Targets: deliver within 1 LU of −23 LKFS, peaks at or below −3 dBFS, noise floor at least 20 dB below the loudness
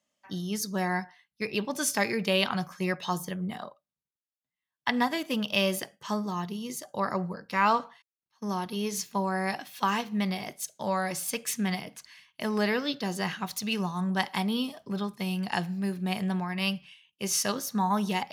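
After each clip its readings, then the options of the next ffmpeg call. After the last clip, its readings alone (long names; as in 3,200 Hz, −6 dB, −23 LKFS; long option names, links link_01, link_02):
integrated loudness −30.0 LKFS; sample peak −8.5 dBFS; target loudness −23.0 LKFS
→ -af "volume=7dB,alimiter=limit=-3dB:level=0:latency=1"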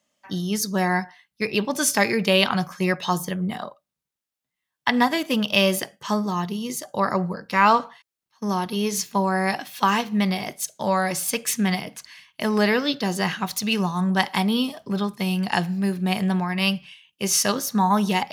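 integrated loudness −23.0 LKFS; sample peak −3.0 dBFS; background noise floor −86 dBFS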